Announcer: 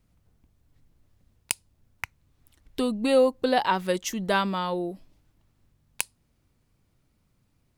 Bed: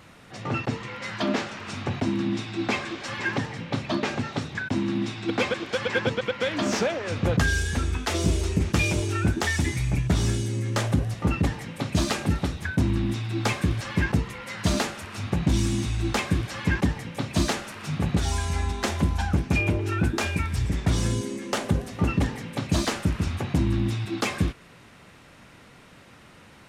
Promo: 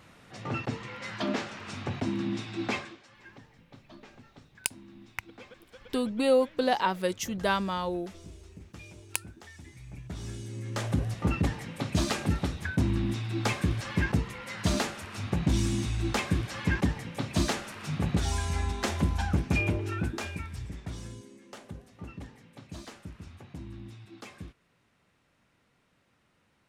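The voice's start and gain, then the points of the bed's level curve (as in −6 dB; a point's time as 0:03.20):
3.15 s, −3.0 dB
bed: 0:02.77 −5 dB
0:03.09 −24.5 dB
0:09.61 −24.5 dB
0:11.05 −3.5 dB
0:19.62 −3.5 dB
0:21.29 −19.5 dB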